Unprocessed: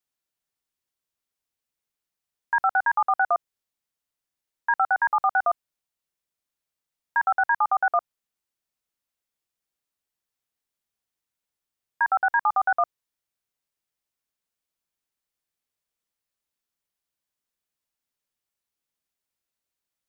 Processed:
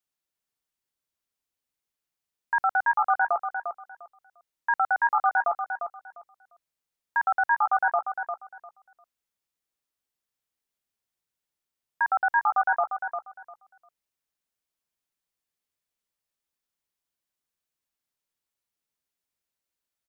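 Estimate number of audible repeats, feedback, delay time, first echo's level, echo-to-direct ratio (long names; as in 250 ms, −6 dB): 2, 20%, 350 ms, −7.5 dB, −7.5 dB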